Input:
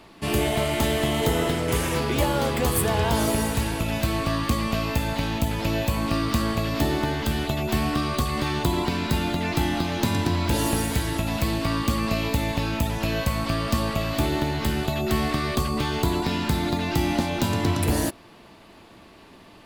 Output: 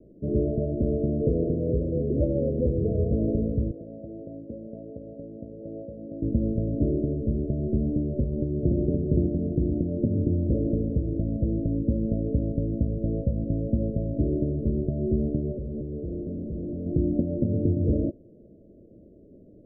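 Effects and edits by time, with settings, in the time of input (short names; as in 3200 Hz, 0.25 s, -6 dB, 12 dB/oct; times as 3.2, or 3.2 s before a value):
3.71–6.22 weighting filter ITU-R 468
8.1–8.74 echo throw 0.52 s, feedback 45%, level -2 dB
15.52–16.86 hard clip -29 dBFS
whole clip: steep low-pass 600 Hz 96 dB/oct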